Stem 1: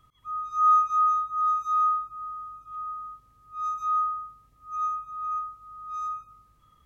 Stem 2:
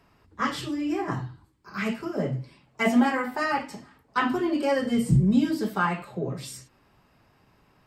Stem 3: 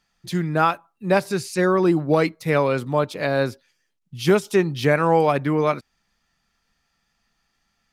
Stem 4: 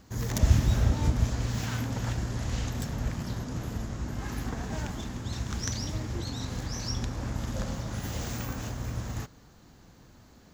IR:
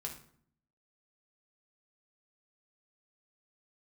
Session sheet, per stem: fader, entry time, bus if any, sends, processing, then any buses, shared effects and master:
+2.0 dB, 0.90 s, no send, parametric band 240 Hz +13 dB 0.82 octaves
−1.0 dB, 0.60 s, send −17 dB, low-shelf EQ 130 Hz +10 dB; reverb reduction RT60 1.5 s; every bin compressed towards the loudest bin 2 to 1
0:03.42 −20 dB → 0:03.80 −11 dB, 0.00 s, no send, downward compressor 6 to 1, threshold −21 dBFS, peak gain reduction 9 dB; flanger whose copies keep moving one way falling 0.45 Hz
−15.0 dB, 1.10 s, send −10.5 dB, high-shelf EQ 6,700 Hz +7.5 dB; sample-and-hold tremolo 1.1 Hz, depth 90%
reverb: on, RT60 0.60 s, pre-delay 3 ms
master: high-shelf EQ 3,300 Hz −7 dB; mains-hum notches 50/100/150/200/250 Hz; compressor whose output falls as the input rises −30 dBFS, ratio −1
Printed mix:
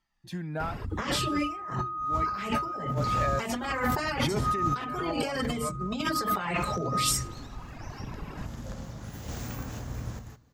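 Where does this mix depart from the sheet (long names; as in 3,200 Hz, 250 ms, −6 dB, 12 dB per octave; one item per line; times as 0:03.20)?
stem 3 −20.0 dB → −9.5 dB
stem 4 −15.0 dB → −7.5 dB
master: missing mains-hum notches 50/100/150/200/250 Hz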